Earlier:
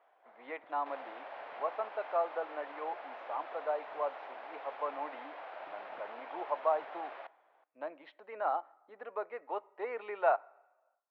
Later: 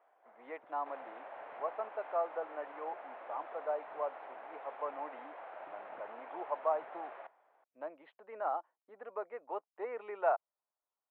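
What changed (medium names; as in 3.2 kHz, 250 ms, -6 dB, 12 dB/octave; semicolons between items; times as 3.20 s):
speech: send off; second sound: add distance through air 100 m; master: add distance through air 380 m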